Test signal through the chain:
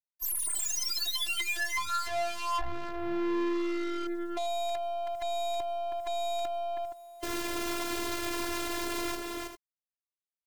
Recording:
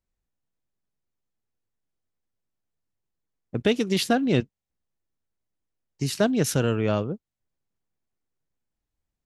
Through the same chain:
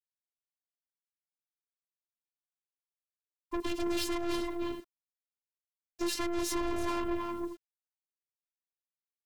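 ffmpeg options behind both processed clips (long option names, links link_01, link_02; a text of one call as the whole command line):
ffmpeg -i in.wav -filter_complex "[0:a]afftfilt=real='real(if(between(b,1,1008),(2*floor((b-1)/24)+1)*24-b,b),0)':imag='imag(if(between(b,1,1008),(2*floor((b-1)/24)+1)*24-b,b),0)*if(between(b,1,1008),-1,1)':win_size=2048:overlap=0.75,highpass=frequency=42:poles=1,highshelf=frequency=4500:gain=-7,asplit=2[link_01][link_02];[link_02]acompressor=threshold=-31dB:ratio=6,volume=2dB[link_03];[link_01][link_03]amix=inputs=2:normalize=0,alimiter=limit=-15.5dB:level=0:latency=1:release=226,asplit=2[link_04][link_05];[link_05]aecho=0:1:321|398:0.316|0.106[link_06];[link_04][link_06]amix=inputs=2:normalize=0,acontrast=80,acrusher=bits=8:mix=0:aa=0.000001,aeval=exprs='(tanh(25.1*val(0)+0.35)-tanh(0.35))/25.1':channel_layout=same,afftfilt=real='hypot(re,im)*cos(PI*b)':imag='0':win_size=512:overlap=0.75" out.wav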